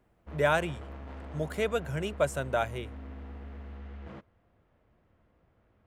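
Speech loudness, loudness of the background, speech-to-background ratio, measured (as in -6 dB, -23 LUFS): -30.5 LUFS, -45.0 LUFS, 14.5 dB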